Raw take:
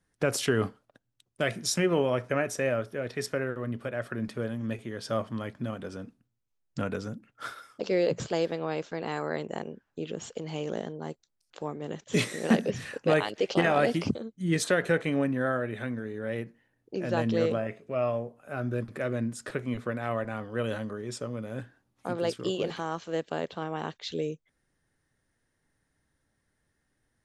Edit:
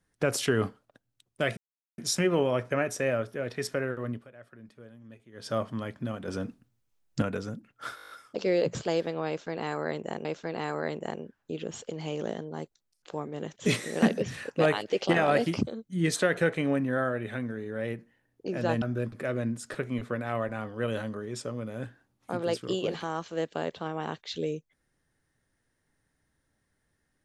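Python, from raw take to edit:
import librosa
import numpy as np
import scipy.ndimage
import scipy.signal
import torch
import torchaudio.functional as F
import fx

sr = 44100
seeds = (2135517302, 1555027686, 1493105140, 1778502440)

y = fx.edit(x, sr, fx.insert_silence(at_s=1.57, length_s=0.41),
    fx.fade_down_up(start_s=3.69, length_s=1.39, db=-17.0, fade_s=0.17),
    fx.clip_gain(start_s=5.87, length_s=0.94, db=6.5),
    fx.stutter(start_s=7.55, slice_s=0.02, count=8),
    fx.repeat(start_s=8.73, length_s=0.97, count=2),
    fx.cut(start_s=17.3, length_s=1.28), tone=tone)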